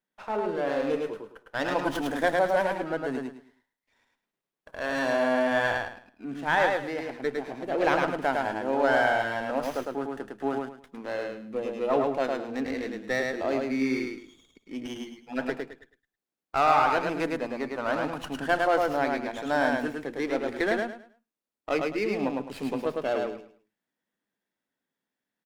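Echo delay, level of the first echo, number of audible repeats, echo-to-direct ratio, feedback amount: 106 ms, -3.0 dB, 3, -2.5 dB, 26%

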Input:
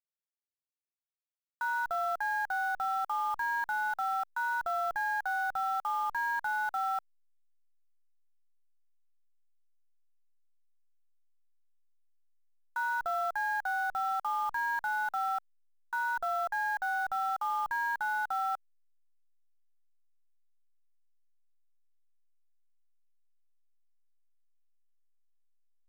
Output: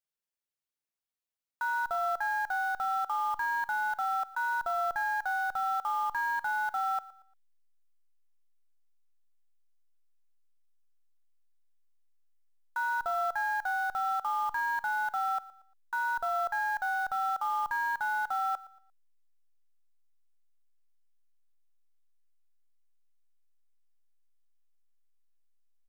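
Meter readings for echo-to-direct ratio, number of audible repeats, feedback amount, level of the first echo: -19.0 dB, 2, 35%, -19.5 dB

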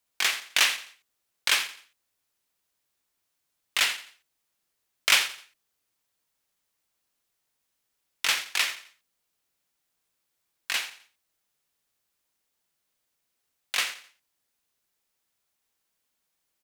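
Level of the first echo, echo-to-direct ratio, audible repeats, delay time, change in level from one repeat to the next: -14.5 dB, -14.0 dB, 3, 86 ms, -9.0 dB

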